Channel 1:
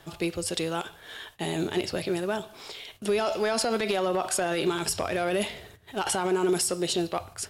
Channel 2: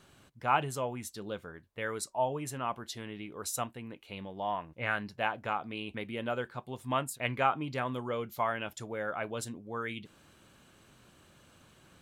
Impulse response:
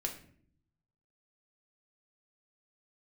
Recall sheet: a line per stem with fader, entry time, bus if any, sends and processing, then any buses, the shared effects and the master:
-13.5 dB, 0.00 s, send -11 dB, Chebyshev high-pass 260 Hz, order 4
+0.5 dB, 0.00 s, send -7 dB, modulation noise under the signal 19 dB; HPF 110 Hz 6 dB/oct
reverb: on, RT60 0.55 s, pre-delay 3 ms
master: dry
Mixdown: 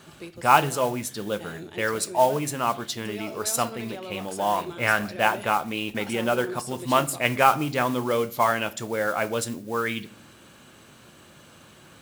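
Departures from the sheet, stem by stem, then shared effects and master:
stem 1: missing Chebyshev high-pass 260 Hz, order 4; stem 2 +0.5 dB -> +7.0 dB

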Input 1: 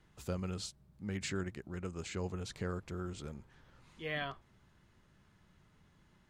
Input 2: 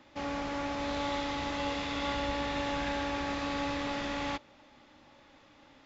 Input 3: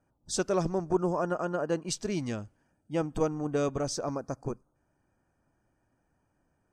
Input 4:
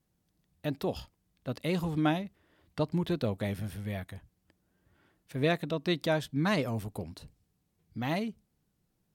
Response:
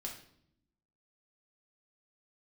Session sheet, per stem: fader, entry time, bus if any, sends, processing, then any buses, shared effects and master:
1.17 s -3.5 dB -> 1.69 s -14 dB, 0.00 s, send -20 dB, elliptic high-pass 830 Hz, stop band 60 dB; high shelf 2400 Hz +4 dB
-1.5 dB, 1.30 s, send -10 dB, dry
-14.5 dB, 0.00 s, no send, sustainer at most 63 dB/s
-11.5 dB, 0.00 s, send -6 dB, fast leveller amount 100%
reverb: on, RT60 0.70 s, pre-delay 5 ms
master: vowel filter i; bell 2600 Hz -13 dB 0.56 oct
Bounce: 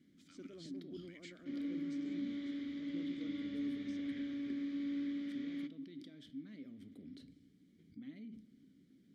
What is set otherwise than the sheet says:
stem 1 -3.5 dB -> +5.0 dB; stem 3 -14.5 dB -> -8.5 dB; stem 4 -11.5 dB -> -18.0 dB

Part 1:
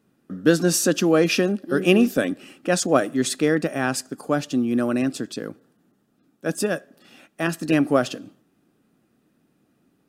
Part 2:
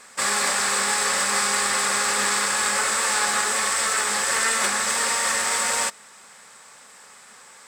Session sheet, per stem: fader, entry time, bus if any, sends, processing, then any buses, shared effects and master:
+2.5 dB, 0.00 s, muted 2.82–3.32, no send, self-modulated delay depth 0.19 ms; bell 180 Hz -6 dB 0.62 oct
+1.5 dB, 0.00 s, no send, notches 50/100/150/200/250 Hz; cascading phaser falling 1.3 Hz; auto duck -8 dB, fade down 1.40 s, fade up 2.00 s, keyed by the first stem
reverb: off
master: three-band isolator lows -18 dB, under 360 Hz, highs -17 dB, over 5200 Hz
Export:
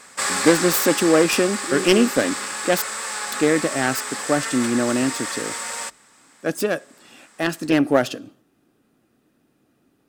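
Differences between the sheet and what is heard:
stem 2: missing cascading phaser falling 1.3 Hz; master: missing three-band isolator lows -18 dB, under 360 Hz, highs -17 dB, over 5200 Hz

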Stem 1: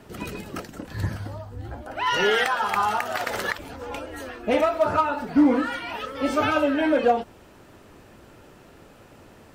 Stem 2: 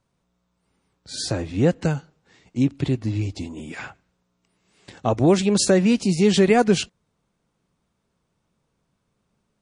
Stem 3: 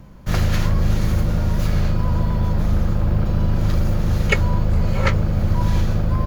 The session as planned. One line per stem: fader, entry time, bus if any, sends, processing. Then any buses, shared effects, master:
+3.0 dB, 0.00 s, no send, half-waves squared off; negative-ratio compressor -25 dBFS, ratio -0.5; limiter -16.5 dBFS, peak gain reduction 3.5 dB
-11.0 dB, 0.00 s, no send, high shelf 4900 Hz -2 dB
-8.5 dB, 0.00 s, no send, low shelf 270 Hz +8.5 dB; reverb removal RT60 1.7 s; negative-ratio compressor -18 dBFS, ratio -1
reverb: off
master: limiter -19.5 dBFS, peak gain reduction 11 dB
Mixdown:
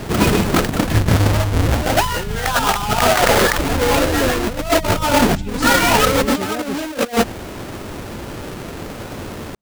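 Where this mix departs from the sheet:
stem 1 +3.0 dB -> +9.5 dB; master: missing limiter -19.5 dBFS, peak gain reduction 11 dB

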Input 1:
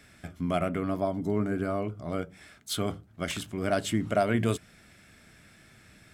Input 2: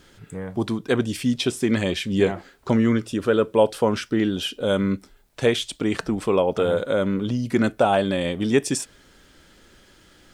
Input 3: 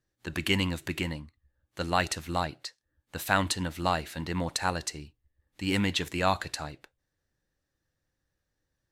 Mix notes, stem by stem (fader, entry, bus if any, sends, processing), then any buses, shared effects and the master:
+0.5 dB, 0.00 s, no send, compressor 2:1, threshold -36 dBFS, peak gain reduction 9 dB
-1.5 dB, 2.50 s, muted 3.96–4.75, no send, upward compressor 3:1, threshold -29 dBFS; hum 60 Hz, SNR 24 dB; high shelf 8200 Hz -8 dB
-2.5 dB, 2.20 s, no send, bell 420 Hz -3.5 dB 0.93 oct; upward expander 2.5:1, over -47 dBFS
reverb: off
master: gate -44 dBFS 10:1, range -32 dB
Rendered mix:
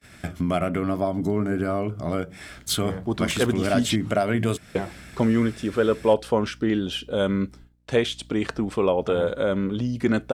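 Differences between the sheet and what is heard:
stem 1 +0.5 dB -> +11.0 dB; stem 2: missing upward compressor 3:1, threshold -29 dBFS; stem 3: muted

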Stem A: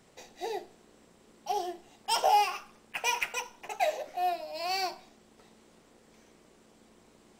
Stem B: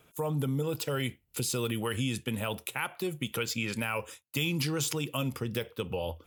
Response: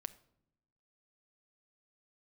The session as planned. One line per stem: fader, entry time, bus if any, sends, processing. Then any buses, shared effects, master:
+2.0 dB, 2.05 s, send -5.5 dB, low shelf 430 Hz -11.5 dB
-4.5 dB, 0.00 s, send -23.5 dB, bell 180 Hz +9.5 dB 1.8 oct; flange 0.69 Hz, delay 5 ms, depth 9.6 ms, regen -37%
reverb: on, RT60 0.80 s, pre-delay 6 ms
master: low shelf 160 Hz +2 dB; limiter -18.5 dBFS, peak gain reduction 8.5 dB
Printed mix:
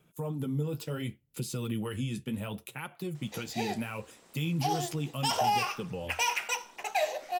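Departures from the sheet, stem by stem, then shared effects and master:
stem A: entry 2.05 s -> 3.15 s; master: missing low shelf 160 Hz +2 dB

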